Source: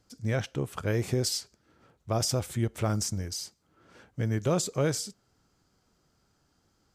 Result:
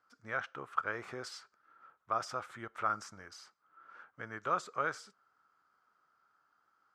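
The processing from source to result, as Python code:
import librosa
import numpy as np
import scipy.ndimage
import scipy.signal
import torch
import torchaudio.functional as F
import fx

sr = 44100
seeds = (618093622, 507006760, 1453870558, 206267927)

y = fx.bandpass_q(x, sr, hz=1300.0, q=4.6)
y = y * librosa.db_to_amplitude(8.5)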